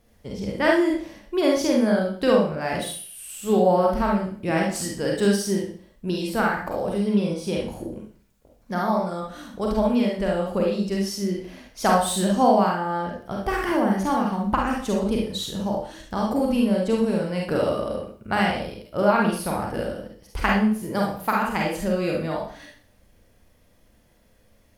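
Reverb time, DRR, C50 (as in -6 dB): 0.45 s, -2.0 dB, 2.0 dB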